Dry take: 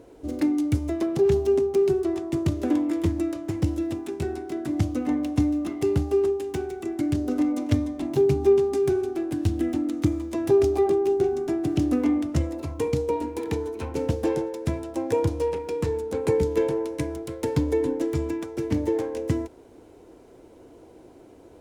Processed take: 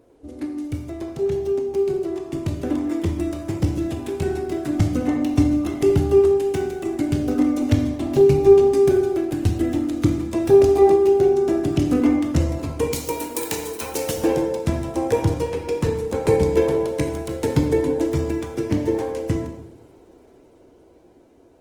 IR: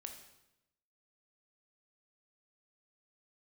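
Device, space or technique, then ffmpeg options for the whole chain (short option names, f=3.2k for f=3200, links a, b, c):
speakerphone in a meeting room: -filter_complex "[0:a]asplit=3[a][b][c];[a]afade=t=out:st=12.92:d=0.02[d];[b]aemphasis=mode=production:type=riaa,afade=t=in:st=12.92:d=0.02,afade=t=out:st=14.17:d=0.02[e];[c]afade=t=in:st=14.17:d=0.02[f];[d][e][f]amix=inputs=3:normalize=0[g];[1:a]atrim=start_sample=2205[h];[g][h]afir=irnorm=-1:irlink=0,dynaudnorm=f=550:g=11:m=11dB" -ar 48000 -c:a libopus -b:a 20k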